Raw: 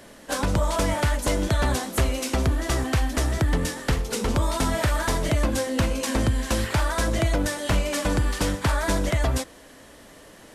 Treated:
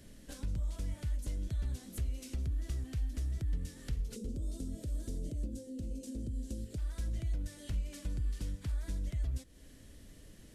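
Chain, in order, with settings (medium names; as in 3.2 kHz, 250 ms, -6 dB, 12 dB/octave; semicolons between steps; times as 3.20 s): 4.16–6.78 s: graphic EQ 250/500/1000/2000/8000 Hz +9/+11/-11/-8/+5 dB; compression 6:1, threshold -34 dBFS, peak gain reduction 21 dB; amplifier tone stack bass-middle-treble 10-0-1; trim +10.5 dB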